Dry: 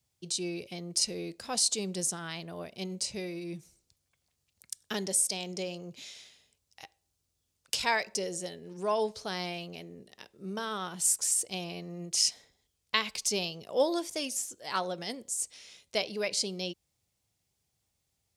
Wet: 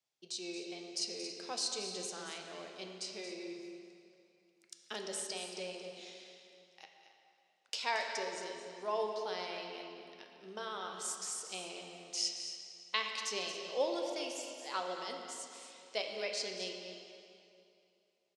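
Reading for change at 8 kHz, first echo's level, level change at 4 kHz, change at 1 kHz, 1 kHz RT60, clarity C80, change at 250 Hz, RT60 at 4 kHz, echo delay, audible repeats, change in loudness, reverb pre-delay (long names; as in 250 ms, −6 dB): −11.5 dB, −11.0 dB, −5.5 dB, −4.5 dB, 2.7 s, 3.5 dB, −9.5 dB, 2.2 s, 226 ms, 2, −8.0 dB, 8 ms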